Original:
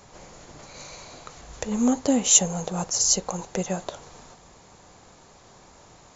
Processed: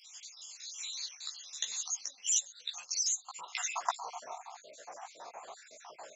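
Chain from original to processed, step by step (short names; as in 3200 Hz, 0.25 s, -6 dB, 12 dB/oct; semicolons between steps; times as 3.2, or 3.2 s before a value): random spectral dropouts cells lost 63%; 2.04–3.56 compressor 12:1, threshold -34 dBFS, peak gain reduction 17.5 dB; chorus voices 4, 1.1 Hz, delay 16 ms, depth 3.8 ms; high-pass sweep 3800 Hz -> 700 Hz, 2.6–4.23; gain +7.5 dB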